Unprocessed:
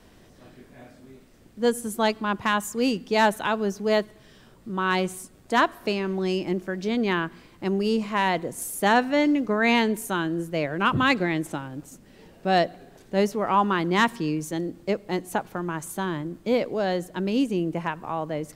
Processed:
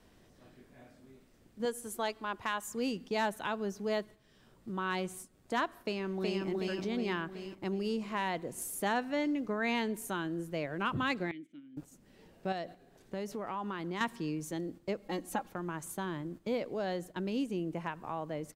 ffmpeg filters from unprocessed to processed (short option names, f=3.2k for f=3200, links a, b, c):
-filter_complex "[0:a]asettb=1/sr,asplit=3[a][b][c];[a]atrim=end=1.654[d];[b]atrim=start=1.65:end=2.68,asetpts=PTS-STARTPTS,afade=t=in:d=0.004:c=qsin,afade=t=out:st=1.026:d=0.004:c=qsin,equalizer=f=170:w=1.5:g=-12.5[e];[c]atrim=start=2.676[f];[d][e]acrossfade=d=0.004:c1=hsin:c2=qsin[g];[g][f]acrossfade=d=0.004:c1=qsin:c2=hsin,asplit=2[h][i];[i]afade=t=in:st=5.83:d=0.01,afade=t=out:st=6.47:d=0.01,aecho=0:1:370|740|1110|1480|1850|2220|2590:0.944061|0.47203|0.236015|0.118008|0.0590038|0.0295019|0.014751[j];[h][j]amix=inputs=2:normalize=0,asettb=1/sr,asplit=3[k][l][m];[k]atrim=end=11.314[n];[l]atrim=start=11.31:end=11.77,asetpts=PTS-STARTPTS,afade=t=in:d=0.004:c=qsin,afade=t=out:st=0.456:d=0.004:c=qsin,asplit=3[o][p][q];[o]bandpass=f=270:t=q:w=8,volume=0dB[r];[p]bandpass=f=2.29k:t=q:w=8,volume=-6dB[s];[q]bandpass=f=3.01k:t=q:w=8,volume=-9dB[t];[r][s][t]amix=inputs=3:normalize=0[u];[m]atrim=start=11.766[v];[n][u]acrossfade=d=0.004:c1=hsin:c2=qsin[w];[w][v]acrossfade=d=0.004:c1=qsin:c2=hsin,asettb=1/sr,asplit=3[x][y][z];[x]atrim=end=12.524[aa];[y]atrim=start=12.52:end=14.01,asetpts=PTS-STARTPTS,afade=t=in:d=0.004:c=qsin,afade=t=out:st=1.486:d=0.004:c=qsin,acompressor=threshold=-27dB:ratio=3:attack=3.2:release=140:knee=1:detection=peak[ab];[z]atrim=start=14.006[ac];[aa][ab]acrossfade=d=0.004:c1=hsin:c2=qsin[ad];[ad][ac]acrossfade=d=0.004:c1=qsin:c2=hsin,asettb=1/sr,asplit=3[ae][af][ag];[ae]atrim=end=15.024[ah];[af]atrim=start=15.02:end=15.51,asetpts=PTS-STARTPTS,afade=t=in:d=0.004:c=qsin,afade=t=out:st=0.486:d=0.004:c=qsin,aecho=1:1:3.7:0.71,atrim=end_sample=21609[ai];[ag]atrim=start=15.506[aj];[ah][ai]acrossfade=d=0.004:c1=hsin:c2=qsin[ak];[ak][aj]acrossfade=d=0.004:c1=qsin:c2=hsin,agate=range=-9dB:threshold=-38dB:ratio=16:detection=peak,acompressor=threshold=-50dB:ratio=1.5"